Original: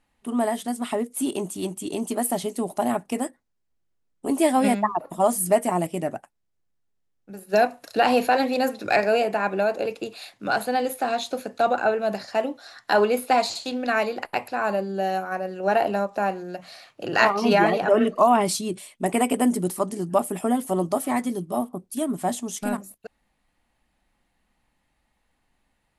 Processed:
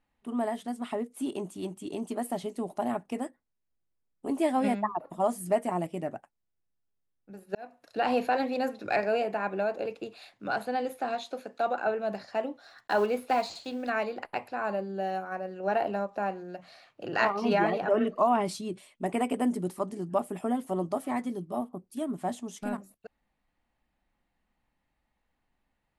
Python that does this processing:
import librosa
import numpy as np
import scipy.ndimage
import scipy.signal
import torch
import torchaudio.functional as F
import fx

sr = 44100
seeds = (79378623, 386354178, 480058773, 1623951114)

y = fx.highpass(x, sr, hz=290.0, slope=6, at=(11.15, 11.87))
y = fx.block_float(y, sr, bits=5, at=(12.62, 13.9))
y = fx.edit(y, sr, fx.fade_in_span(start_s=7.55, length_s=0.57), tone=tone)
y = fx.lowpass(y, sr, hz=3100.0, slope=6)
y = y * librosa.db_to_amplitude(-6.5)